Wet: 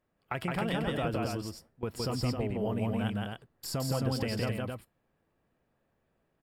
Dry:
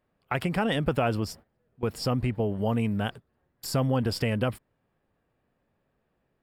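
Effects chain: compressor 3:1, threshold -27 dBFS, peak gain reduction 5.5 dB; resonator 330 Hz, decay 0.19 s, harmonics all, mix 40%; on a send: loudspeakers at several distances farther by 57 m -2 dB, 91 m -5 dB

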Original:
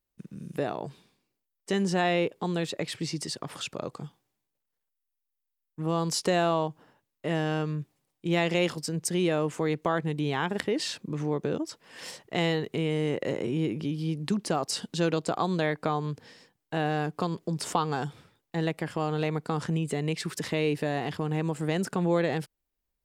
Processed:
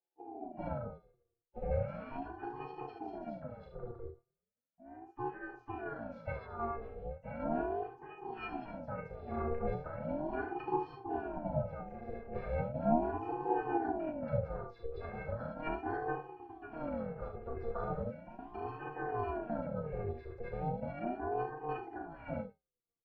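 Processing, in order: air absorption 290 m; fixed phaser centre 1300 Hz, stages 4; wow and flutter 25 cents; thirty-one-band EQ 160 Hz +8 dB, 250 Hz +8 dB, 400 Hz +8 dB, 800 Hz +7 dB; on a send: early reflections 39 ms -5 dB, 72 ms -7 dB; on the sum: echoes that change speed 0.102 s, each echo +2 st, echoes 2, each echo -6 dB; octave resonator A#, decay 0.21 s; harmoniser -7 st -12 dB, +4 st -12 dB; ring modulator with a swept carrier 420 Hz, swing 45%, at 0.37 Hz; gain +6 dB

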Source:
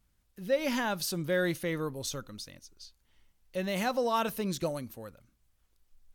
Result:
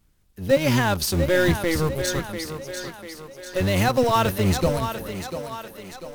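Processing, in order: octaver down 1 oct, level +2 dB; in parallel at -10.5 dB: bit-crush 5-bit; on the sum: thinning echo 0.694 s, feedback 53%, high-pass 210 Hz, level -8.5 dB; gain +6.5 dB

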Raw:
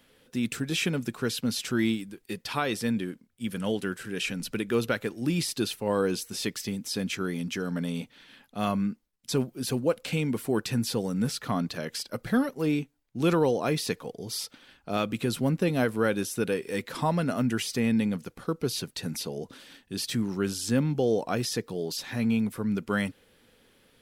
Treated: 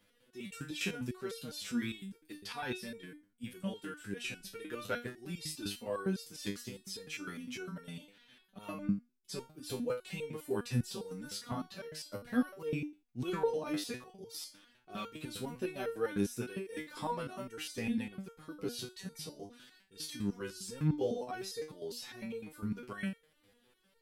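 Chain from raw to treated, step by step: stepped resonator 9.9 Hz 100–460 Hz; gain +2 dB

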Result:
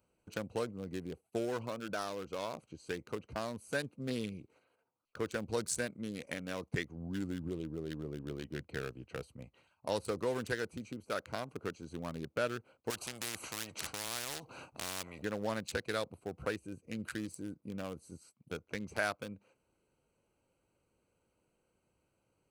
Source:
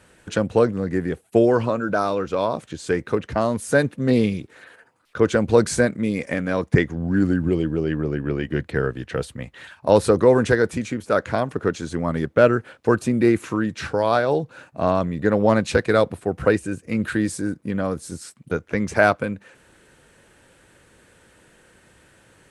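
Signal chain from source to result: Wiener smoothing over 25 samples; gate -49 dBFS, range -6 dB; pre-emphasis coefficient 0.9; compressor 1.5:1, threshold -42 dBFS, peak gain reduction 6 dB; 12.9–15.22 spectral compressor 4:1; gain +3.5 dB

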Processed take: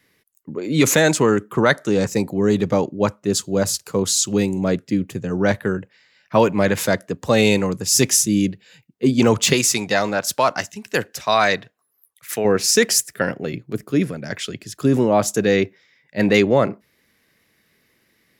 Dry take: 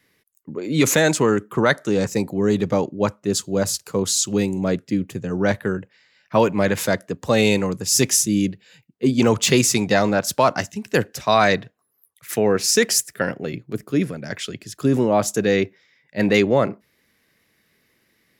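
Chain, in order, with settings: 9.53–12.45 low shelf 460 Hz -8.5 dB; gain +1.5 dB

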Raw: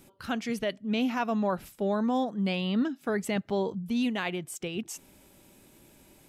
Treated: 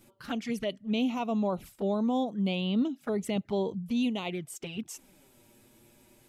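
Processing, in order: envelope flanger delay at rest 9.9 ms, full sweep at -26.5 dBFS

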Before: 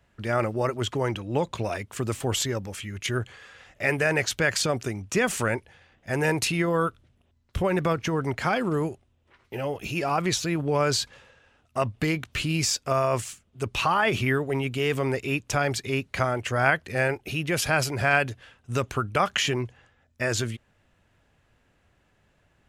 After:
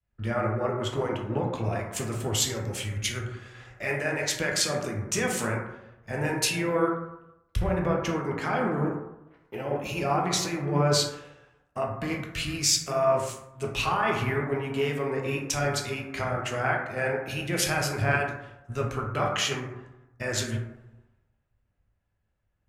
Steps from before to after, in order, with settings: compressor 3:1, threshold -41 dBFS, peak gain reduction 18.5 dB; plate-style reverb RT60 1.7 s, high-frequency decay 0.25×, DRR -1.5 dB; three-band expander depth 100%; gain +7.5 dB

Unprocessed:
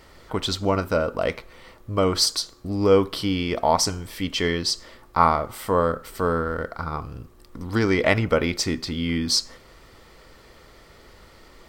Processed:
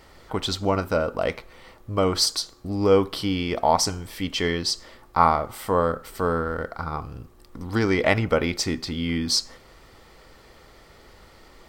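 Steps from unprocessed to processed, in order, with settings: bell 790 Hz +4.5 dB 0.21 oct; gain -1 dB

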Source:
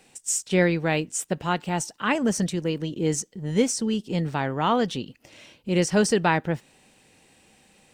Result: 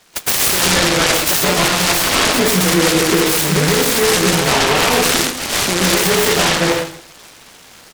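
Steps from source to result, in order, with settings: weighting filter D; gate -39 dBFS, range -17 dB; tone controls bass -10 dB, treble -5 dB; compressor 12:1, threshold -31 dBFS, peak gain reduction 18.5 dB; doubler 12 ms -4 dB; plate-style reverb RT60 0.65 s, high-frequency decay 0.95×, pre-delay 0.115 s, DRR -9.5 dB; maximiser +20.5 dB; noise-modulated delay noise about 1400 Hz, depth 0.15 ms; gain -4 dB

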